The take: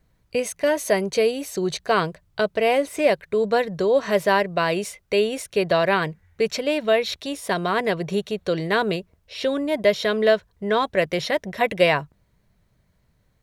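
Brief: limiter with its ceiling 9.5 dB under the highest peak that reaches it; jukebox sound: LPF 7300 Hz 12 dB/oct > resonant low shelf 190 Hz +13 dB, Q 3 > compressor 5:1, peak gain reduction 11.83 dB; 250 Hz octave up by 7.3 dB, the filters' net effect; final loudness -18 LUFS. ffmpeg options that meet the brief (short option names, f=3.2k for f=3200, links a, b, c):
-af "equalizer=f=250:t=o:g=6,alimiter=limit=-14dB:level=0:latency=1,lowpass=7.3k,lowshelf=f=190:t=q:w=3:g=13,acompressor=threshold=-25dB:ratio=5,volume=11.5dB"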